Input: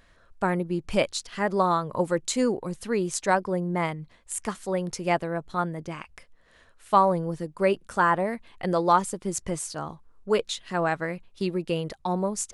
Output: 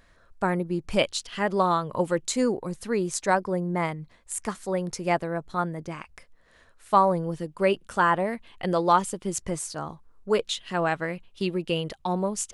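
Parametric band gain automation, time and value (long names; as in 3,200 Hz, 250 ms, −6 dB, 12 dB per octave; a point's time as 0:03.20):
parametric band 3,000 Hz 0.41 octaves
−3.5 dB
from 0:00.99 +7 dB
from 0:02.25 −3 dB
from 0:07.24 +5.5 dB
from 0:09.41 −1.5 dB
from 0:10.42 +7 dB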